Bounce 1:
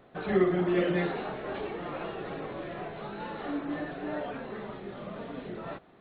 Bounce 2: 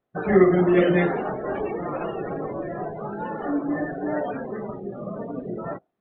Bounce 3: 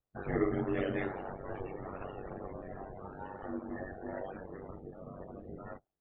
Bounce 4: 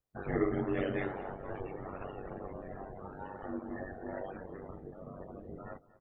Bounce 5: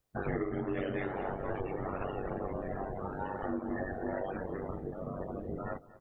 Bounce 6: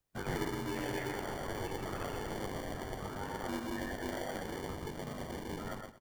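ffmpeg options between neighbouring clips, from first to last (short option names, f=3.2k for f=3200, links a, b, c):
-af "afftdn=nr=32:nf=-39,volume=8.5dB"
-af "flanger=delay=3.7:depth=5.5:regen=-50:speed=1.4:shape=sinusoidal,lowshelf=f=120:t=q:w=1.5:g=13.5,aeval=exprs='val(0)*sin(2*PI*48*n/s)':c=same,volume=-6.5dB"
-af "aecho=1:1:233|466|699:0.112|0.0494|0.0217"
-af "acompressor=threshold=-38dB:ratio=8,volume=7.5dB"
-filter_complex "[0:a]aecho=1:1:122:0.631,acrossover=split=150|700[a][b][c];[b]acrusher=samples=34:mix=1:aa=0.000001[d];[a][d][c]amix=inputs=3:normalize=0,volume=-3dB"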